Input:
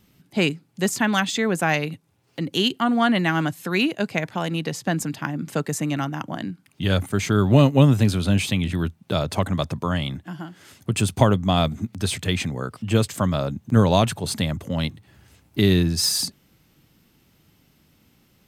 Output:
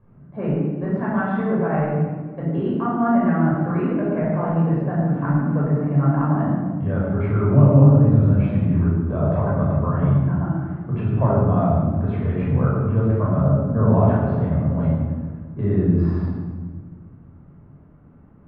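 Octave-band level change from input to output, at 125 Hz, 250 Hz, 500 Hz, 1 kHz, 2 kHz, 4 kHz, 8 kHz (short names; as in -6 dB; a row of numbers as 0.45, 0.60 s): +5.5 dB, +3.0 dB, +1.5 dB, 0.0 dB, -8.0 dB, under -30 dB, under -40 dB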